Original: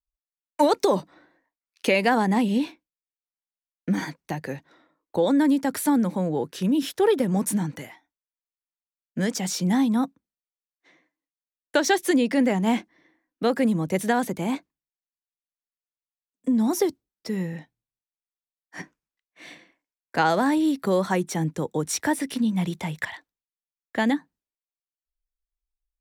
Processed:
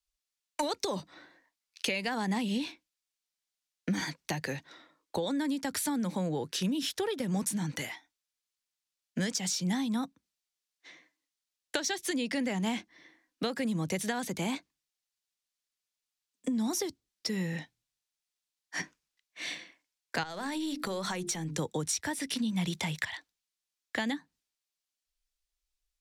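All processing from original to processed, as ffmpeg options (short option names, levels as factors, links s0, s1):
-filter_complex "[0:a]asettb=1/sr,asplit=3[s0][s1][s2];[s0]atrim=end=20.234[s3];[s1]atrim=start=20.23:end=21.59,asetpts=PTS-STARTPTS,afade=t=in:d=0.004:c=qsin,afade=t=out:st=1.356:d=0.004:c=qsin,bandreject=f=50:t=h:w=6,bandreject=f=100:t=h:w=6,bandreject=f=150:t=h:w=6,bandreject=f=200:t=h:w=6,bandreject=f=250:t=h:w=6,bandreject=f=300:t=h:w=6,bandreject=f=350:t=h:w=6,bandreject=f=400:t=h:w=6,bandreject=f=450:t=h:w=6,acompressor=threshold=0.0355:ratio=4:attack=3.2:release=140:knee=1:detection=peak,aeval=exprs='(tanh(7.08*val(0)+0.25)-tanh(0.25))/7.08':c=same[s4];[s2]atrim=start=21.586[s5];[s3][s4]acrossfade=d=0.004:c1=hsin:c2=qsin[s6];[s6][s5]acrossfade=d=0.004:c1=qsin:c2=hsin,equalizer=f=4900:t=o:w=2.8:g=12,acrossover=split=130[s7][s8];[s8]acompressor=threshold=0.0316:ratio=6[s9];[s7][s9]amix=inputs=2:normalize=0,volume=0.891"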